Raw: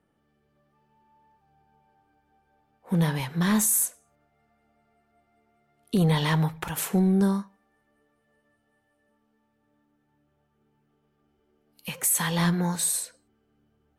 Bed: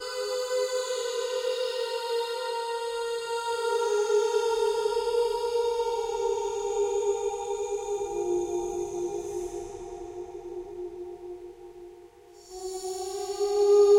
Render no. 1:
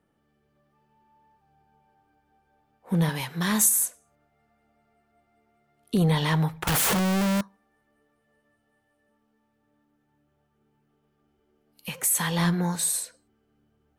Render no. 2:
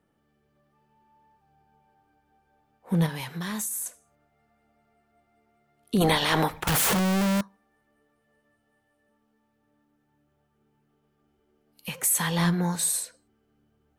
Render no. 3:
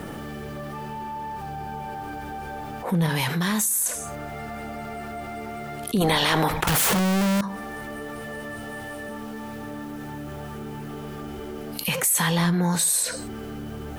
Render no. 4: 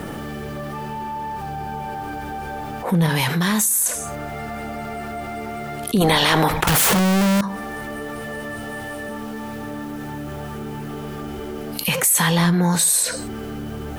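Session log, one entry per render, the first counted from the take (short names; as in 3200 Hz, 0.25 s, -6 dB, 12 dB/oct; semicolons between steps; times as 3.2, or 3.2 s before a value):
3.09–3.69 tilt +1.5 dB/oct; 6.67–7.41 infinite clipping
3.06–3.86 compressor 4:1, threshold -30 dBFS; 6–6.61 spectral limiter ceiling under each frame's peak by 20 dB
fast leveller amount 70%
gain +4.5 dB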